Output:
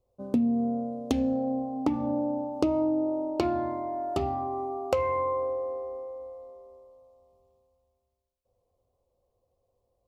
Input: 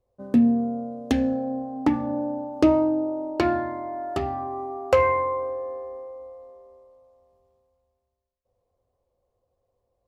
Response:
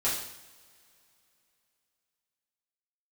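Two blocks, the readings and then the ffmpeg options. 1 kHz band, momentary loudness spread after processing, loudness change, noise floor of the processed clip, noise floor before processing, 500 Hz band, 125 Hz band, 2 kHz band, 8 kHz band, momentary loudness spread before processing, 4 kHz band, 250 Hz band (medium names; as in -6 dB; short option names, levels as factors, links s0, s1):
-4.0 dB, 11 LU, -4.5 dB, -78 dBFS, -78 dBFS, -4.0 dB, -4.0 dB, -11.5 dB, no reading, 14 LU, -4.0 dB, -4.5 dB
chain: -af "acompressor=threshold=0.0794:ratio=6,equalizer=f=1700:w=2.8:g=-13.5"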